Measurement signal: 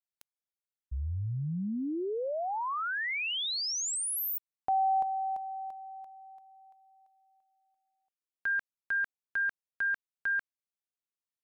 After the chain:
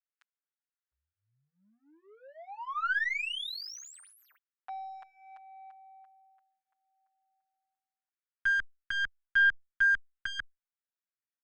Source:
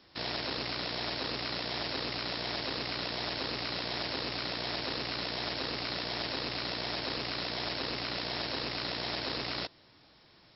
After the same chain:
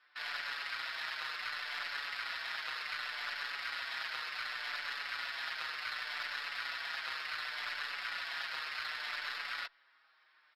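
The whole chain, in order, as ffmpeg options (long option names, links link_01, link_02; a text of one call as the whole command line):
ffmpeg -i in.wav -filter_complex "[0:a]adynamicsmooth=sensitivity=4:basefreq=2500,highpass=frequency=1500:width_type=q:width=2.5,aeval=exprs='0.126*(cos(1*acos(clip(val(0)/0.126,-1,1)))-cos(1*PI/2))+0.0158*(cos(2*acos(clip(val(0)/0.126,-1,1)))-cos(2*PI/2))+0.00141*(cos(4*acos(clip(val(0)/0.126,-1,1)))-cos(4*PI/2))':channel_layout=same,asplit=2[link_01][link_02];[link_02]adelay=6.2,afreqshift=-0.66[link_03];[link_01][link_03]amix=inputs=2:normalize=1" out.wav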